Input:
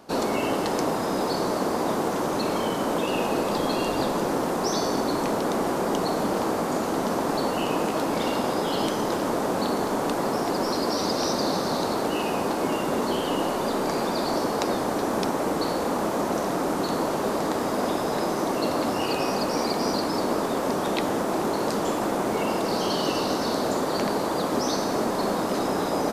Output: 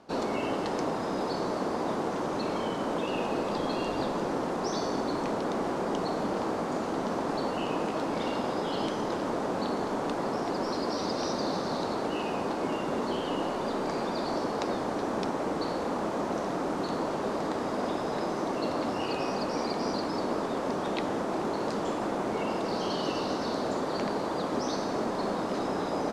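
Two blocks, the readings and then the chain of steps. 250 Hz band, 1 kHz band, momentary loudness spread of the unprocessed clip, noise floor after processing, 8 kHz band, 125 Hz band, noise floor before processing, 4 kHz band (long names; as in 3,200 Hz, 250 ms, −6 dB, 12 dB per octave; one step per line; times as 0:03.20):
−5.0 dB, −5.5 dB, 1 LU, −33 dBFS, −11.0 dB, −5.0 dB, −27 dBFS, −7.5 dB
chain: high-frequency loss of the air 71 metres
level −5 dB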